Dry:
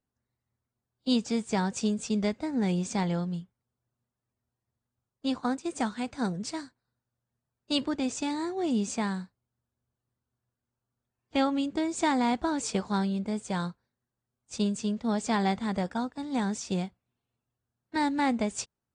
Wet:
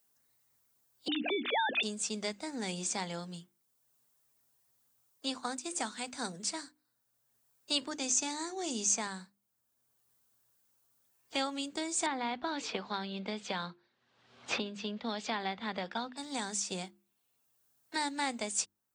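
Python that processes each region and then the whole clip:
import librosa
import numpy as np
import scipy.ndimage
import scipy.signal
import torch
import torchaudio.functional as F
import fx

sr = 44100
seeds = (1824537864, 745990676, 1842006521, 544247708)

y = fx.chain(x, sr, fx.sine_speech(),
    fx.env_flatten(amount_pct=70), at=(1.08, 1.83))
y = fx.chain(y, sr, fx.highpass(hz=85.0, slope=12),
    fx.peak_eq(hz=6300.0, db=11.5, octaves=0.36), at=(7.91, 9.07))
y = fx.chain(y, sr, fx.lowpass(hz=3600.0, slope=24),
    fx.band_squash(depth_pct=100), at=(12.06, 16.17))
y = fx.riaa(y, sr, side='recording')
y = fx.hum_notches(y, sr, base_hz=50, count=7)
y = fx.band_squash(y, sr, depth_pct=40)
y = y * 10.0 ** (-5.0 / 20.0)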